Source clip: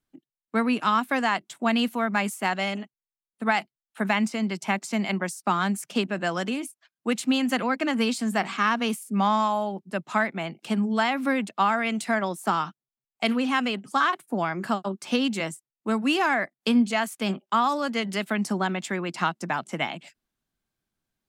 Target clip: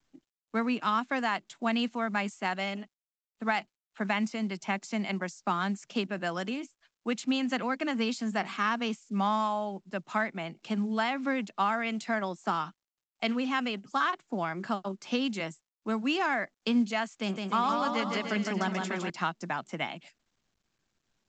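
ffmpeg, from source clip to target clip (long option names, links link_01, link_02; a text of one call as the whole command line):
ffmpeg -i in.wav -filter_complex "[0:a]asettb=1/sr,asplit=3[link_01][link_02][link_03];[link_01]atrim=end=17.074[link_04];[link_02]atrim=start=17.07:end=19.1,asetpts=PTS-STARTPTS,afade=type=in:duration=0.004:curve=qsin,afade=type=out:start_time=2.026:duration=0.004:curve=qsin,aecho=1:1:160|296|411.6|509.9|593.4:0.631|0.398|0.251|0.158|0.1,atrim=end_sample=89523[link_05];[link_03]atrim=start=19.096[link_06];[link_04][link_05]acrossfade=duration=0.004:curve1=hsin:curve2=qsin[link_07];[link_07][link_06]acrossfade=duration=0.004:curve1=qsin:curve2=hsin,volume=-5.5dB" -ar 16000 -c:a pcm_mulaw out.wav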